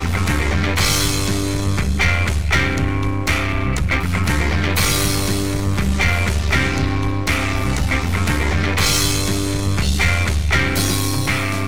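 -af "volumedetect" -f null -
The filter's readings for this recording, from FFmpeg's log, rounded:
mean_volume: -17.6 dB
max_volume: -6.0 dB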